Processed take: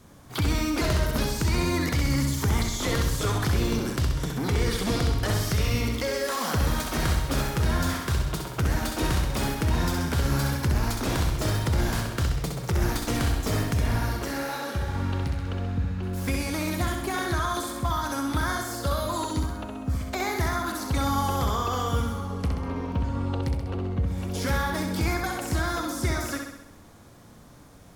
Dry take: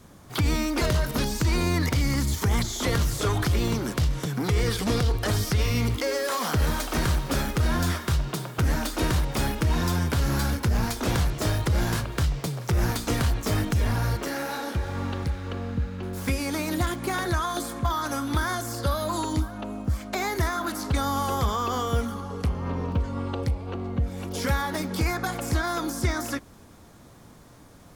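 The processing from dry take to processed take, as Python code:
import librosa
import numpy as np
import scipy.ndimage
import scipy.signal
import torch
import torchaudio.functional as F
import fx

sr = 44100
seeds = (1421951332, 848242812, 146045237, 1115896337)

y = fx.room_flutter(x, sr, wall_m=11.2, rt60_s=0.81)
y = F.gain(torch.from_numpy(y), -2.0).numpy()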